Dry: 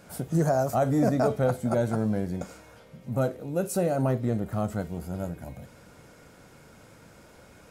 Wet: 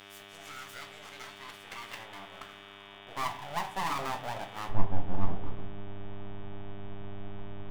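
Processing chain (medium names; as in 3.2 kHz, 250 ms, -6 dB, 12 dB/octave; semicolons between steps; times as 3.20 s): treble shelf 2.1 kHz -10 dB; small resonant body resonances 330/3900 Hz, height 9 dB; peak limiter -17.5 dBFS, peak gain reduction 7.5 dB; band-pass sweep 2.9 kHz -> 460 Hz, 1.44–3.02 s; full-wave rectifier; mains buzz 100 Hz, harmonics 37, -54 dBFS -4 dB/octave; tilt EQ +4 dB/octave, from 4.68 s -2 dB/octave; reverberation RT60 0.45 s, pre-delay 7 ms, DRR 5 dB; trim +3.5 dB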